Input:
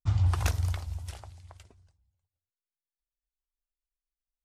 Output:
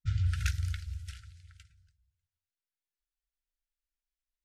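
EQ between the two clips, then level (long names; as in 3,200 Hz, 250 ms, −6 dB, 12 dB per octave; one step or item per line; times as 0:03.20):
linear-phase brick-wall band-stop 170–1,300 Hz
parametric band 100 Hz −5.5 dB 0.74 octaves
high-shelf EQ 8,800 Hz −11 dB
0.0 dB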